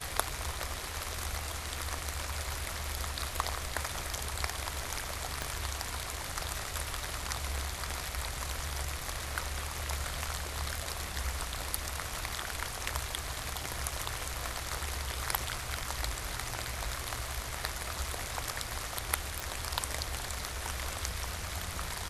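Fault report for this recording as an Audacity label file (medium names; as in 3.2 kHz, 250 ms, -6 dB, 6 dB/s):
5.420000	5.420000	pop
19.400000	19.400000	pop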